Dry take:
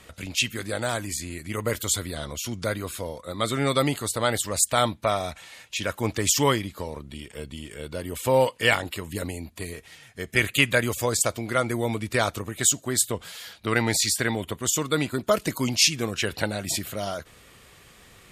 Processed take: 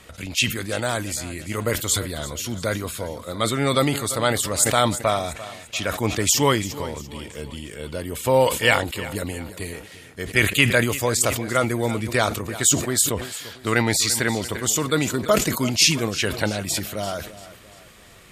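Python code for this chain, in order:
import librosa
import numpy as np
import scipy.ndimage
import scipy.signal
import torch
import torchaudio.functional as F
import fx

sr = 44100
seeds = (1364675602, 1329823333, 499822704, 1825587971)

p1 = x + fx.echo_feedback(x, sr, ms=343, feedback_pct=43, wet_db=-16, dry=0)
p2 = fx.sustainer(p1, sr, db_per_s=85.0)
y = p2 * librosa.db_to_amplitude(2.5)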